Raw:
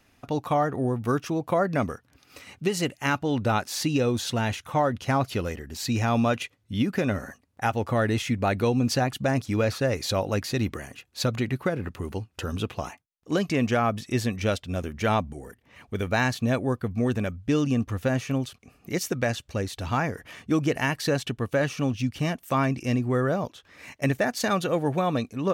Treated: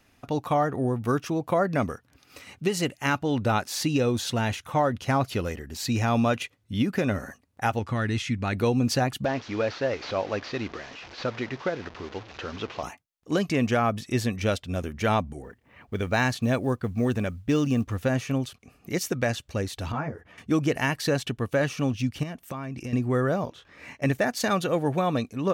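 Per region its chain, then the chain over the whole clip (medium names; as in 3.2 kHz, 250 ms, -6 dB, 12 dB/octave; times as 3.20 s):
7.79–8.53 s: low-pass 7.2 kHz + peaking EQ 580 Hz -10 dB 1.4 oct
9.25–12.83 s: one-bit delta coder 32 kbps, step -34.5 dBFS + tone controls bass -11 dB, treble -6 dB
15.42–17.98 s: level-controlled noise filter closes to 2.2 kHz, open at -21 dBFS + companded quantiser 8-bit
19.92–20.38 s: low-pass 1.1 kHz 6 dB/octave + three-phase chorus
22.23–22.93 s: compression 16:1, threshold -30 dBFS + tone controls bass +2 dB, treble -3 dB
23.45–24.06 s: low-pass 3.1 kHz 6 dB/octave + doubling 25 ms -2 dB
whole clip: none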